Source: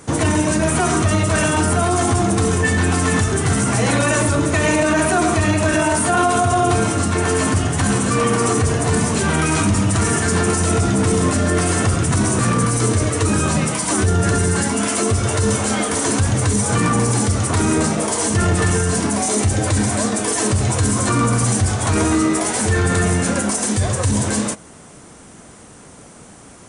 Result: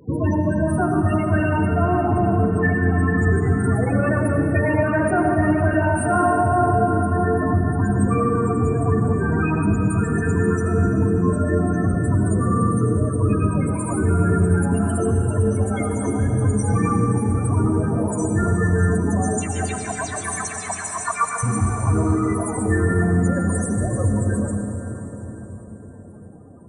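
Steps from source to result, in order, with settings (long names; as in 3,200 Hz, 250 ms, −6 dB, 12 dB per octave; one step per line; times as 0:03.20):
0:19.38–0:21.43: auto-filter high-pass saw down 7.5 Hz 620–7,200 Hz
spectral peaks only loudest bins 16
convolution reverb RT60 4.9 s, pre-delay 73 ms, DRR 3.5 dB
level −2.5 dB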